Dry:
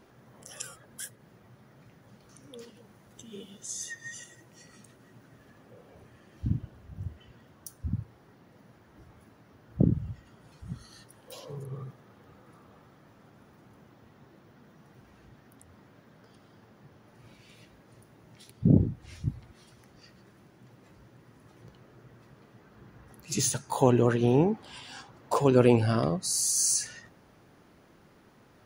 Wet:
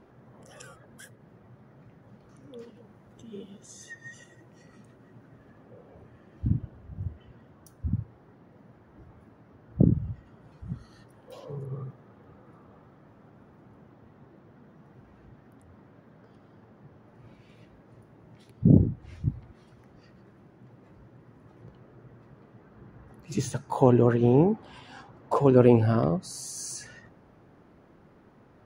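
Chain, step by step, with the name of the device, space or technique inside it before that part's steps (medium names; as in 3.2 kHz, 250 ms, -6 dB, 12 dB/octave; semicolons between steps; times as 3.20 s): through cloth (treble shelf 2.7 kHz -17 dB); trim +3 dB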